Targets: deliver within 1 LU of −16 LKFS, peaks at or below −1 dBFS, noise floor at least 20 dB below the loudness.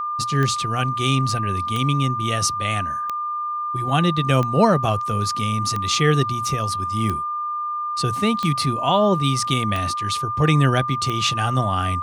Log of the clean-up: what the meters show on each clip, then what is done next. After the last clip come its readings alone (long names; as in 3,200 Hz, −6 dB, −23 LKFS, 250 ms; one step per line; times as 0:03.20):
number of clicks 9; interfering tone 1,200 Hz; level of the tone −23 dBFS; integrated loudness −21.0 LKFS; sample peak −3.5 dBFS; target loudness −16.0 LKFS
→ click removal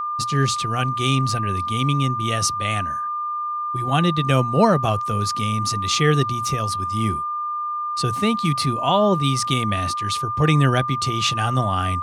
number of clicks 0; interfering tone 1,200 Hz; level of the tone −23 dBFS
→ notch filter 1,200 Hz, Q 30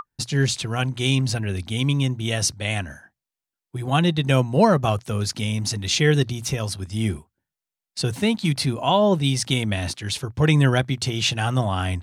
interfering tone none found; integrated loudness −22.0 LKFS; sample peak −4.5 dBFS; target loudness −16.0 LKFS
→ level +6 dB
brickwall limiter −1 dBFS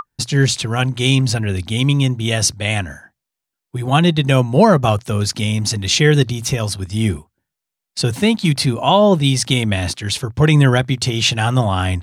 integrated loudness −16.5 LKFS; sample peak −1.0 dBFS; background noise floor −83 dBFS